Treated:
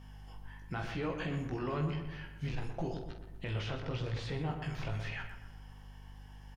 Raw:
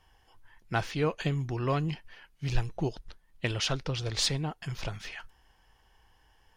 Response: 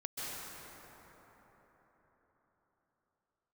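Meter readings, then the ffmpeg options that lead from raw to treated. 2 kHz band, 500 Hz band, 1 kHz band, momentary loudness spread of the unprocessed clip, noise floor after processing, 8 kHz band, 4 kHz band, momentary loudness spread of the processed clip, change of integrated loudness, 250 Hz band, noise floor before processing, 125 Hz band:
−5.5 dB, −5.5 dB, −6.0 dB, 11 LU, −51 dBFS, below −20 dB, −13.0 dB, 17 LU, −6.5 dB, −3.5 dB, −65 dBFS, −4.5 dB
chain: -filter_complex "[0:a]flanger=delay=16.5:depth=3.4:speed=0.95,asplit=2[link_01][link_02];[link_02]acompressor=threshold=-49dB:ratio=6,volume=1dB[link_03];[link_01][link_03]amix=inputs=2:normalize=0,alimiter=level_in=4.5dB:limit=-24dB:level=0:latency=1:release=53,volume=-4.5dB,acrossover=split=3000[link_04][link_05];[link_05]acompressor=threshold=-58dB:ratio=4:attack=1:release=60[link_06];[link_04][link_06]amix=inputs=2:normalize=0,aeval=exprs='val(0)+0.00316*(sin(2*PI*50*n/s)+sin(2*PI*2*50*n/s)/2+sin(2*PI*3*50*n/s)/3+sin(2*PI*4*50*n/s)/4+sin(2*PI*5*50*n/s)/5)':channel_layout=same,asplit=2[link_07][link_08];[link_08]adelay=47,volume=-9dB[link_09];[link_07][link_09]amix=inputs=2:normalize=0,asplit=2[link_10][link_11];[link_11]adelay=122,lowpass=frequency=1900:poles=1,volume=-6.5dB,asplit=2[link_12][link_13];[link_13]adelay=122,lowpass=frequency=1900:poles=1,volume=0.5,asplit=2[link_14][link_15];[link_15]adelay=122,lowpass=frequency=1900:poles=1,volume=0.5,asplit=2[link_16][link_17];[link_17]adelay=122,lowpass=frequency=1900:poles=1,volume=0.5,asplit=2[link_18][link_19];[link_19]adelay=122,lowpass=frequency=1900:poles=1,volume=0.5,asplit=2[link_20][link_21];[link_21]adelay=122,lowpass=frequency=1900:poles=1,volume=0.5[link_22];[link_12][link_14][link_16][link_18][link_20][link_22]amix=inputs=6:normalize=0[link_23];[link_10][link_23]amix=inputs=2:normalize=0"

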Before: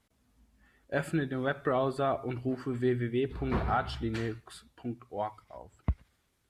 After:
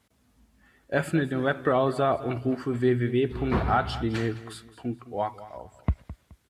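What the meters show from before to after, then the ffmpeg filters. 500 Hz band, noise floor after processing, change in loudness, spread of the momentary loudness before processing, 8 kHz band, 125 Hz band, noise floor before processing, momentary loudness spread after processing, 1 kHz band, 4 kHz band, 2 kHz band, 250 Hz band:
+5.5 dB, −67 dBFS, +5.5 dB, 12 LU, can't be measured, +5.5 dB, −74 dBFS, 12 LU, +5.5 dB, +5.5 dB, +5.5 dB, +5.5 dB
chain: -filter_complex "[0:a]highpass=53,asplit=2[link_01][link_02];[link_02]aecho=0:1:212|424|636:0.158|0.046|0.0133[link_03];[link_01][link_03]amix=inputs=2:normalize=0,volume=5.5dB"

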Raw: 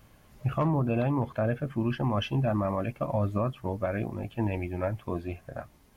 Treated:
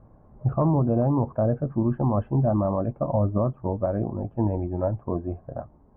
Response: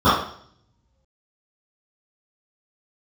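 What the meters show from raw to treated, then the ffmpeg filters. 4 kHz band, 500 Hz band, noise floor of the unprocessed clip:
below −30 dB, +5.0 dB, −59 dBFS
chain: -af "lowpass=frequency=1000:width=0.5412,lowpass=frequency=1000:width=1.3066,volume=5dB"

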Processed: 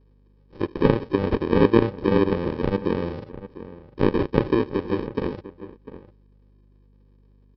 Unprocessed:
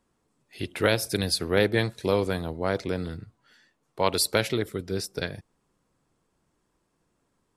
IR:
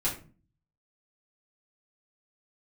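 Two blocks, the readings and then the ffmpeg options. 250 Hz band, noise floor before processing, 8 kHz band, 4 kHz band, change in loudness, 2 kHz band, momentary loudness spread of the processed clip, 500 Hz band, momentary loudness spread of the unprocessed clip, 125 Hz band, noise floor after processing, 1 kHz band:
+8.5 dB, −74 dBFS, below −30 dB, −10.0 dB, +4.0 dB, −3.5 dB, 20 LU, +4.5 dB, 13 LU, +4.5 dB, −57 dBFS, +3.0 dB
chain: -filter_complex "[0:a]aresample=11025,acrusher=samples=16:mix=1:aa=0.000001,aresample=44100,equalizer=frequency=450:width=0.93:gain=10.5,aeval=exprs='val(0)+0.00158*(sin(2*PI*50*n/s)+sin(2*PI*2*50*n/s)/2+sin(2*PI*3*50*n/s)/3+sin(2*PI*4*50*n/s)/4+sin(2*PI*5*50*n/s)/5)':channel_layout=same,acrossover=split=3500[link_01][link_02];[link_02]acompressor=threshold=-54dB:ratio=4:attack=1:release=60[link_03];[link_01][link_03]amix=inputs=2:normalize=0,asplit=2[link_04][link_05];[link_05]adelay=699.7,volume=-14dB,highshelf=frequency=4000:gain=-15.7[link_06];[link_04][link_06]amix=inputs=2:normalize=0"

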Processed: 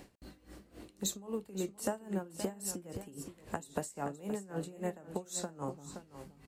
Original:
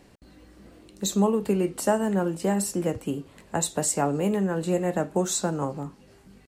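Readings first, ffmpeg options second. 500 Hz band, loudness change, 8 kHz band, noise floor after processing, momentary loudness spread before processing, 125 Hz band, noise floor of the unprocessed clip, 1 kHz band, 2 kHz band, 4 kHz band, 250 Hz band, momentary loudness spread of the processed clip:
−14.0 dB, −13.5 dB, −11.5 dB, −64 dBFS, 9 LU, −14.5 dB, −55 dBFS, −13.5 dB, −12.5 dB, −10.0 dB, −14.5 dB, 16 LU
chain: -filter_complex "[0:a]acompressor=threshold=-33dB:ratio=12,highshelf=frequency=11000:gain=7,asplit=2[link_01][link_02];[link_02]aecho=0:1:522:0.299[link_03];[link_01][link_03]amix=inputs=2:normalize=0,aeval=exprs='val(0)*pow(10,-19*(0.5-0.5*cos(2*PI*3.7*n/s))/20)':channel_layout=same,volume=2.5dB"

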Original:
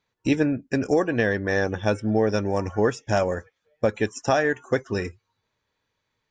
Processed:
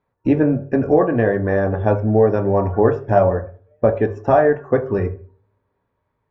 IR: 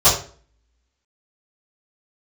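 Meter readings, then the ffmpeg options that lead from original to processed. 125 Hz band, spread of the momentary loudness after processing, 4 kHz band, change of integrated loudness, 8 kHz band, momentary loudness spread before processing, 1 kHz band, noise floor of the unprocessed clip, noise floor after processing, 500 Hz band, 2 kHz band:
+8.5 dB, 7 LU, below −10 dB, +6.5 dB, below −20 dB, 5 LU, +7.0 dB, −78 dBFS, −73 dBFS, +7.5 dB, −1.5 dB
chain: -filter_complex "[0:a]lowpass=1200,asplit=2[link_01][link_02];[1:a]atrim=start_sample=2205,lowpass=3100[link_03];[link_02][link_03]afir=irnorm=-1:irlink=0,volume=-27.5dB[link_04];[link_01][link_04]amix=inputs=2:normalize=0,volume=5.5dB"

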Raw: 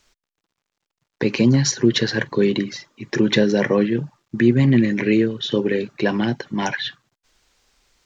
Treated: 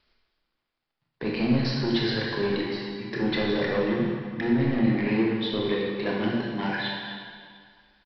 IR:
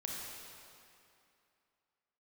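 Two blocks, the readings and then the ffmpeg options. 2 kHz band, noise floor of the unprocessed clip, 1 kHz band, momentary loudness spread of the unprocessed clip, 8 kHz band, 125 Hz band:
−5.0 dB, below −85 dBFS, −3.0 dB, 10 LU, can't be measured, −8.5 dB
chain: -filter_complex "[0:a]tremolo=f=7.7:d=0.35,aresample=11025,asoftclip=type=tanh:threshold=-17dB,aresample=44100[link_01];[1:a]atrim=start_sample=2205,asetrate=57330,aresample=44100[link_02];[link_01][link_02]afir=irnorm=-1:irlink=0"

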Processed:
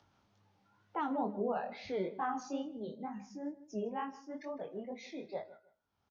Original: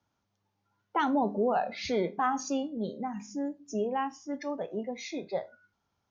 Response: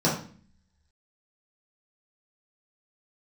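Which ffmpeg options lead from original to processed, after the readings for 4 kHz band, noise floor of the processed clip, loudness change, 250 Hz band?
−11.5 dB, −79 dBFS, −7.5 dB, −7.5 dB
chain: -filter_complex "[0:a]agate=range=-7dB:threshold=-51dB:ratio=16:detection=peak,lowpass=5200,acrossover=split=420|1700[link_01][link_02][link_03];[link_03]alimiter=level_in=11.5dB:limit=-24dB:level=0:latency=1:release=180,volume=-11.5dB[link_04];[link_01][link_02][link_04]amix=inputs=3:normalize=0,acompressor=mode=upward:threshold=-45dB:ratio=2.5,flanger=delay=18.5:depth=7.9:speed=2.2,asplit=2[link_05][link_06];[link_06]adelay=156,lowpass=frequency=3400:poles=1,volume=-17dB,asplit=2[link_07][link_08];[link_08]adelay=156,lowpass=frequency=3400:poles=1,volume=0.23[link_09];[link_05][link_07][link_09]amix=inputs=3:normalize=0,volume=-4.5dB"

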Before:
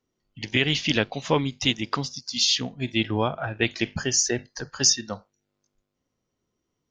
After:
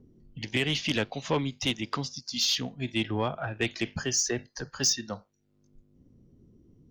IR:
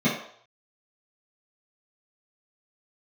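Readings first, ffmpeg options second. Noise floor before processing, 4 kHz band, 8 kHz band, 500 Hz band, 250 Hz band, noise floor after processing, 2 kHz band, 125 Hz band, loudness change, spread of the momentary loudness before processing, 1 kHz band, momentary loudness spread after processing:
−80 dBFS, −5.0 dB, −5.0 dB, −4.5 dB, −4.5 dB, −69 dBFS, −5.0 dB, −4.0 dB, −5.0 dB, 9 LU, −5.0 dB, 8 LU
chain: -filter_complex "[0:a]acrossover=split=350|1100|4400[link_01][link_02][link_03][link_04];[link_01]acompressor=mode=upward:threshold=-31dB:ratio=2.5[link_05];[link_05][link_02][link_03][link_04]amix=inputs=4:normalize=0,asoftclip=type=tanh:threshold=-13.5dB,volume=-3.5dB"

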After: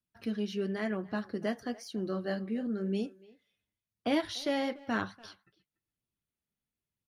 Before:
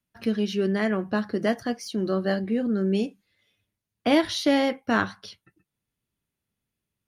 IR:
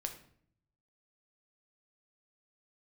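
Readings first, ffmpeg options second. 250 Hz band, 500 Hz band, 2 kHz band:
−9.0 dB, −9.0 dB, −9.5 dB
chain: -filter_complex "[0:a]asplit=2[link_01][link_02];[link_02]adelay=290,highpass=300,lowpass=3400,asoftclip=type=hard:threshold=-17dB,volume=-20dB[link_03];[link_01][link_03]amix=inputs=2:normalize=0,flanger=delay=0.2:depth=5:regen=-55:speed=0.99:shape=sinusoidal,volume=-5dB"

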